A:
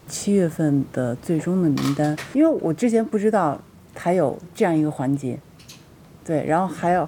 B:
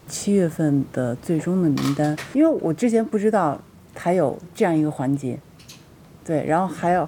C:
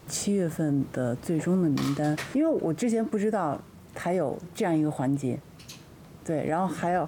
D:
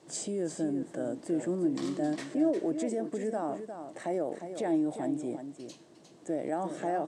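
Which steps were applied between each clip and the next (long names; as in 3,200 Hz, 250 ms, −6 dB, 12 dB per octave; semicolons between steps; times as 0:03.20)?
no processing that can be heard
brickwall limiter −16 dBFS, peak gain reduction 8.5 dB; level −1.5 dB
loudspeaker in its box 230–9,000 Hz, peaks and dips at 330 Hz +8 dB, 630 Hz +4 dB, 1,300 Hz −7 dB, 2,400 Hz −5 dB, 8,100 Hz +5 dB; single-tap delay 355 ms −9 dB; level −7.5 dB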